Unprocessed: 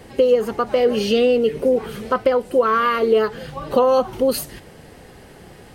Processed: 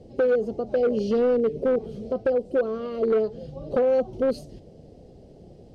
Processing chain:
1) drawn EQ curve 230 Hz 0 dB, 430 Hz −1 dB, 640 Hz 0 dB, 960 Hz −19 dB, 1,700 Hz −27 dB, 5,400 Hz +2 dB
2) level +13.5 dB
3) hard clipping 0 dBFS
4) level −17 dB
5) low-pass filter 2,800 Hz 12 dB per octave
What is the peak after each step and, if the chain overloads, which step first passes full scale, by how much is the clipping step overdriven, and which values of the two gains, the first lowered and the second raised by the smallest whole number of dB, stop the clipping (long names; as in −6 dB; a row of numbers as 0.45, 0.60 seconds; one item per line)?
−6.0, +7.5, 0.0, −17.0, −16.5 dBFS
step 2, 7.5 dB
step 2 +5.5 dB, step 4 −9 dB